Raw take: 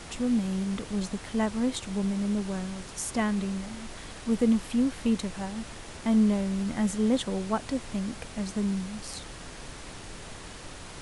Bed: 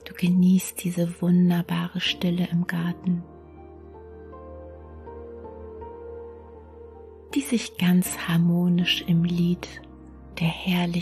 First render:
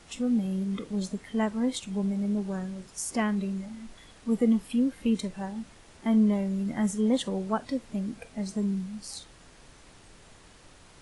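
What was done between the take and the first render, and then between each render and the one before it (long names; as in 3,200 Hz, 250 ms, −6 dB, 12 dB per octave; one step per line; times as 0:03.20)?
noise reduction from a noise print 11 dB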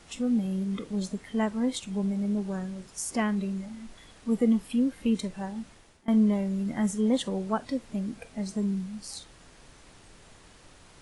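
0:05.57–0:06.08: fade out equal-power, to −22.5 dB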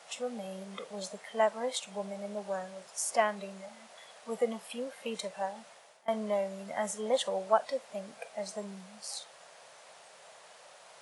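high-pass filter 150 Hz 24 dB per octave
low shelf with overshoot 420 Hz −12.5 dB, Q 3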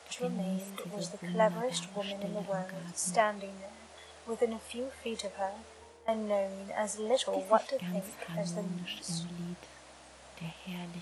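mix in bed −18 dB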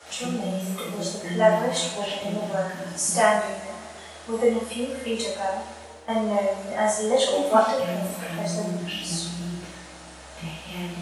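coupled-rooms reverb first 0.6 s, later 2.4 s, DRR −9.5 dB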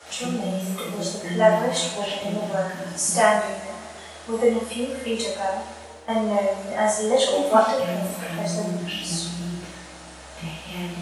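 level +1.5 dB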